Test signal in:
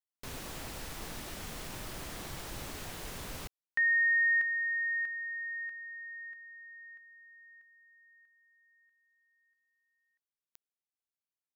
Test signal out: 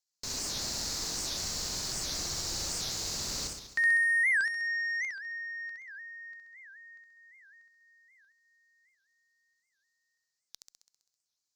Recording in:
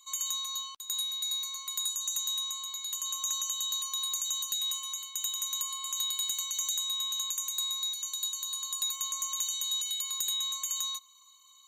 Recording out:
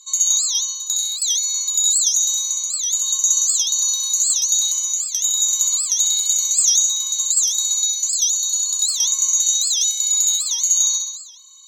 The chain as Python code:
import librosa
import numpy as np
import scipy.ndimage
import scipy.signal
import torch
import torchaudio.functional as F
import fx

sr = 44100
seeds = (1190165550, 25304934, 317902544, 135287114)

p1 = fx.cheby_harmonics(x, sr, harmonics=(7,), levels_db=(-32,), full_scale_db=-21.5)
p2 = fx.band_shelf(p1, sr, hz=5500.0, db=16.0, octaves=1.1)
p3 = p2 + fx.room_flutter(p2, sr, wall_m=11.2, rt60_s=0.95, dry=0)
y = fx.record_warp(p3, sr, rpm=78.0, depth_cents=250.0)